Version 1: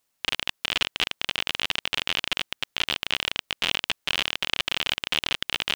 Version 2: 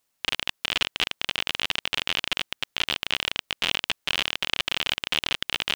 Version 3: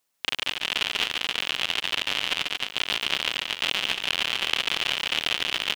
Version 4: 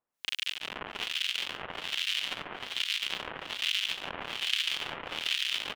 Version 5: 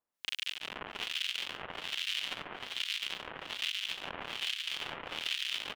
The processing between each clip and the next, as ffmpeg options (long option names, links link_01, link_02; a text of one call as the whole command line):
ffmpeg -i in.wav -af anull out.wav
ffmpeg -i in.wav -filter_complex "[0:a]lowshelf=frequency=120:gain=-8,asplit=2[link_01][link_02];[link_02]aecho=0:1:140|231|290.2|328.6|353.6:0.631|0.398|0.251|0.158|0.1[link_03];[link_01][link_03]amix=inputs=2:normalize=0,volume=-1dB" out.wav
ffmpeg -i in.wav -filter_complex "[0:a]asplit=9[link_01][link_02][link_03][link_04][link_05][link_06][link_07][link_08][link_09];[link_02]adelay=395,afreqshift=96,volume=-5dB[link_10];[link_03]adelay=790,afreqshift=192,volume=-9.9dB[link_11];[link_04]adelay=1185,afreqshift=288,volume=-14.8dB[link_12];[link_05]adelay=1580,afreqshift=384,volume=-19.6dB[link_13];[link_06]adelay=1975,afreqshift=480,volume=-24.5dB[link_14];[link_07]adelay=2370,afreqshift=576,volume=-29.4dB[link_15];[link_08]adelay=2765,afreqshift=672,volume=-34.3dB[link_16];[link_09]adelay=3160,afreqshift=768,volume=-39.2dB[link_17];[link_01][link_10][link_11][link_12][link_13][link_14][link_15][link_16][link_17]amix=inputs=9:normalize=0,acrossover=split=1700[link_18][link_19];[link_18]aeval=exprs='val(0)*(1-1/2+1/2*cos(2*PI*1.2*n/s))':channel_layout=same[link_20];[link_19]aeval=exprs='val(0)*(1-1/2-1/2*cos(2*PI*1.2*n/s))':channel_layout=same[link_21];[link_20][link_21]amix=inputs=2:normalize=0,volume=-3.5dB" out.wav
ffmpeg -i in.wav -af "alimiter=limit=-16dB:level=0:latency=1:release=295,volume=-3dB" out.wav